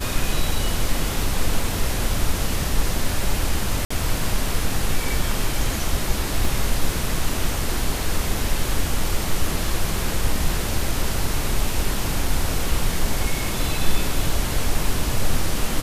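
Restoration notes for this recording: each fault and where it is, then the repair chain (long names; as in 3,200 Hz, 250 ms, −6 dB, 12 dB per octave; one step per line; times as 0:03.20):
0:03.85–0:03.90: drop-out 55 ms
0:06.45: drop-out 2.1 ms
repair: repair the gap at 0:03.85, 55 ms
repair the gap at 0:06.45, 2.1 ms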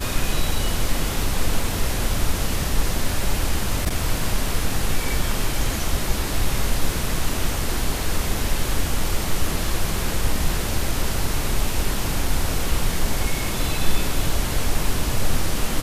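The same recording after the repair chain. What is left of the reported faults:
none of them is left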